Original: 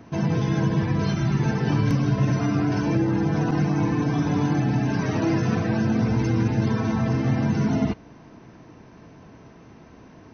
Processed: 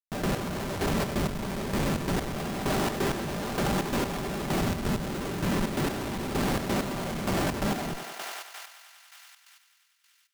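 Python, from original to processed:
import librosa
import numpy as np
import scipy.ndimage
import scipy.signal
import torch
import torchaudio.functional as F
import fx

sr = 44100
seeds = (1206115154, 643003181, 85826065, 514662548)

y = fx.envelope_sharpen(x, sr, power=3.0, at=(4.61, 5.84))
y = fx.cabinet(y, sr, low_hz=180.0, low_slope=12, high_hz=3100.0, hz=(310.0, 650.0, 1900.0), db=(-5, 6, -9))
y = fx.whisperise(y, sr, seeds[0])
y = fx.comb_fb(y, sr, f0_hz=590.0, decay_s=0.18, harmonics='all', damping=0.0, mix_pct=50, at=(1.06, 2.52))
y = fx.schmitt(y, sr, flips_db=-35.0)
y = y + 0.31 * np.pad(y, (int(5.1 * sr / 1000.0), 0))[:len(y)]
y = fx.echo_thinned(y, sr, ms=96, feedback_pct=74, hz=470.0, wet_db=-8.5)
y = fx.step_gate(y, sr, bpm=130, pattern='x.x....x', floor_db=-12.0, edge_ms=4.5)
y = fx.env_flatten(y, sr, amount_pct=50)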